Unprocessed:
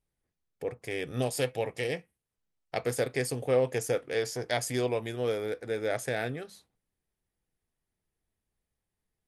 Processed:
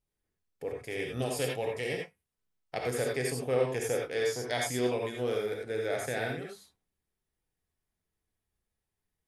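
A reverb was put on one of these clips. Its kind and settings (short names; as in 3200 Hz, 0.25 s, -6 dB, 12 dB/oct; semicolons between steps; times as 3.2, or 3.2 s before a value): non-linear reverb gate 0.11 s rising, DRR 0 dB; gain -3.5 dB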